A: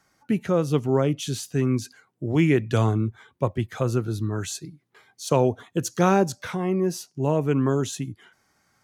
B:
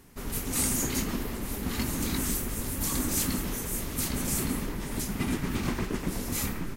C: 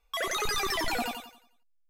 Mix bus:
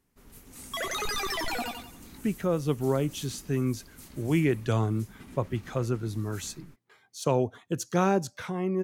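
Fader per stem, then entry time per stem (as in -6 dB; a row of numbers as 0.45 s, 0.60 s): -5.0 dB, -18.5 dB, -1.5 dB; 1.95 s, 0.00 s, 0.60 s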